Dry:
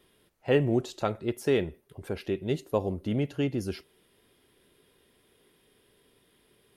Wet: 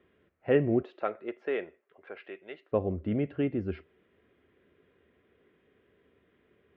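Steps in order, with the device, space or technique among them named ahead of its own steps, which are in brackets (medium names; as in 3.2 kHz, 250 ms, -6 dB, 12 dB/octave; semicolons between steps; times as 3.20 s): bass cabinet (cabinet simulation 69–2300 Hz, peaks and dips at 78 Hz +7 dB, 130 Hz -6 dB, 900 Hz -8 dB); 0.82–2.71 s: high-pass 370 Hz -> 1 kHz 12 dB/octave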